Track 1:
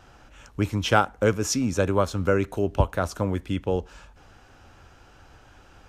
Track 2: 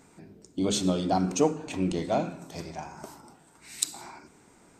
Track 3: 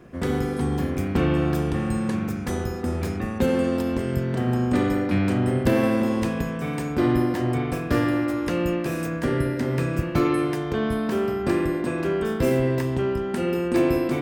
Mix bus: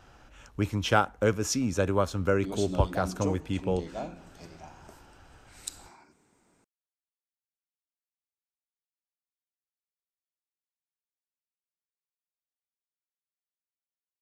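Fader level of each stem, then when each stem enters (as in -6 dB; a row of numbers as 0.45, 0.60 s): -3.5 dB, -10.0 dB, off; 0.00 s, 1.85 s, off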